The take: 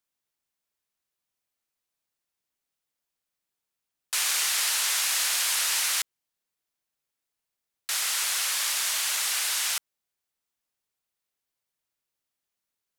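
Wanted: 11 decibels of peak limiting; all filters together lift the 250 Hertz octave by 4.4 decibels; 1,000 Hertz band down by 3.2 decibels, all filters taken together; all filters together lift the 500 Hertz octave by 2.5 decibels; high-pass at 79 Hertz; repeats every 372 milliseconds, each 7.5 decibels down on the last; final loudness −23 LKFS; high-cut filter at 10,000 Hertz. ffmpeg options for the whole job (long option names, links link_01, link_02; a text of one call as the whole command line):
ffmpeg -i in.wav -af "highpass=79,lowpass=10000,equalizer=frequency=250:width_type=o:gain=4.5,equalizer=frequency=500:width_type=o:gain=4.5,equalizer=frequency=1000:width_type=o:gain=-5.5,alimiter=level_in=0.5dB:limit=-24dB:level=0:latency=1,volume=-0.5dB,aecho=1:1:372|744|1116|1488|1860:0.422|0.177|0.0744|0.0312|0.0131,volume=8.5dB" out.wav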